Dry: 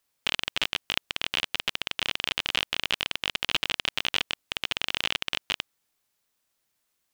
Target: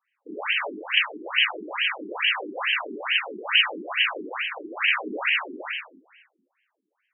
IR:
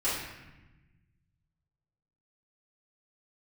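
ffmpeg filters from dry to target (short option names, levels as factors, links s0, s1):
-filter_complex "[0:a]asettb=1/sr,asplit=3[s0][s1][s2];[s0]atrim=end=4.764[s3];[s1]atrim=start=4.76:end=5.31,asetpts=PTS-STARTPTS,afade=t=in:d=0.004:c=qsin,afade=t=out:st=0.546:d=0.004:c=qsin,afreqshift=-430[s4];[s2]atrim=start=5.306[s5];[s3][s4]acrossfade=d=0.004:c1=hsin:c2=qsin[s6];[s6][s5]acrossfade=d=0.004:c1=qsin:c2=hsin[s7];[1:a]atrim=start_sample=2205[s8];[s7][s8]afir=irnorm=-1:irlink=0,afftfilt=real='re*between(b*sr/1024,290*pow(2300/290,0.5+0.5*sin(2*PI*2.3*pts/sr))/1.41,290*pow(2300/290,0.5+0.5*sin(2*PI*2.3*pts/sr))*1.41)':imag='im*between(b*sr/1024,290*pow(2300/290,0.5+0.5*sin(2*PI*2.3*pts/sr))/1.41,290*pow(2300/290,0.5+0.5*sin(2*PI*2.3*pts/sr))*1.41)':win_size=1024:overlap=0.75,volume=1.58"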